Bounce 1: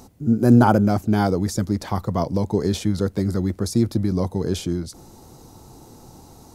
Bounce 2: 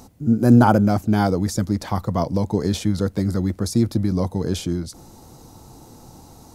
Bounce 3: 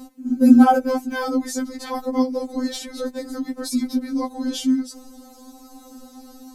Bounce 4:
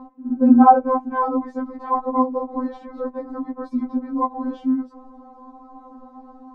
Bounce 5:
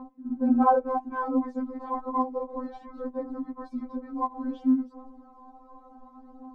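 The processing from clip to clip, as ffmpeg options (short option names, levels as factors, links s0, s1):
-af "equalizer=f=390:w=6.9:g=-5,volume=1.12"
-af "equalizer=f=130:w=0.63:g=5.5,afftfilt=real='re*3.46*eq(mod(b,12),0)':imag='im*3.46*eq(mod(b,12),0)':win_size=2048:overlap=0.75,volume=1.33"
-af "lowpass=f=990:t=q:w=4.9,volume=0.794"
-af "aphaser=in_gain=1:out_gain=1:delay=4.3:decay=0.51:speed=0.31:type=triangular,volume=0.422"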